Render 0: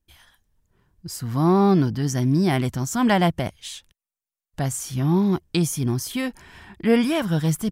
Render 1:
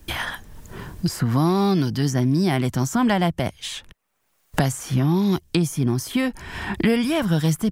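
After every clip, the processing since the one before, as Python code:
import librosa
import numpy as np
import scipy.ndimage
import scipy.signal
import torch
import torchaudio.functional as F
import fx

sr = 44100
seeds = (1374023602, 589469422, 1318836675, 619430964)

y = fx.band_squash(x, sr, depth_pct=100)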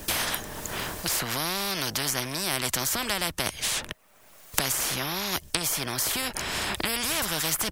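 y = fx.peak_eq(x, sr, hz=620.0, db=7.0, octaves=0.23)
y = fx.spectral_comp(y, sr, ratio=4.0)
y = F.gain(torch.from_numpy(y), 2.0).numpy()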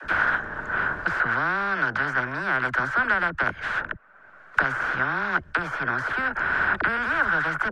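y = fx.lowpass_res(x, sr, hz=1500.0, q=8.9)
y = fx.dispersion(y, sr, late='lows', ms=44.0, hz=340.0)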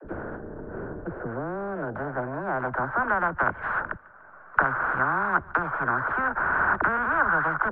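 y = fx.filter_sweep_lowpass(x, sr, from_hz=430.0, to_hz=1100.0, start_s=1.01, end_s=3.47, q=1.8)
y = fx.echo_feedback(y, sr, ms=147, feedback_pct=46, wet_db=-23.0)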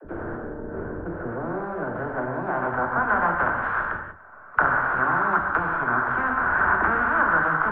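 y = fx.doubler(x, sr, ms=24.0, db=-13)
y = fx.rev_gated(y, sr, seeds[0], gate_ms=220, shape='flat', drr_db=1.0)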